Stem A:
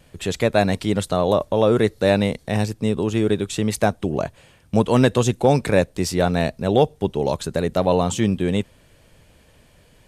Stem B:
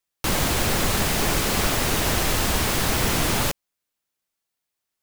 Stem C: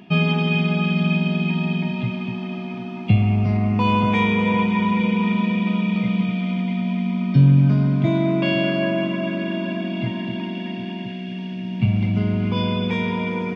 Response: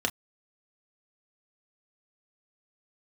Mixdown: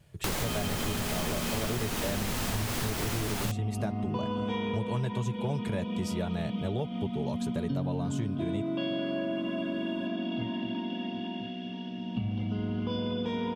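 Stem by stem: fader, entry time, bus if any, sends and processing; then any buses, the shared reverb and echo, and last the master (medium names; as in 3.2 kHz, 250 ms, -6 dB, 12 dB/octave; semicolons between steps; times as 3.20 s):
-9.0 dB, 0.00 s, no send, peaking EQ 120 Hz +10 dB 0.85 oct; comb of notches 260 Hz
-2.5 dB, 0.00 s, no send, none
-11.5 dB, 0.35 s, send -5 dB, none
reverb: on, pre-delay 3 ms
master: compression 6:1, threshold -28 dBFS, peak gain reduction 12 dB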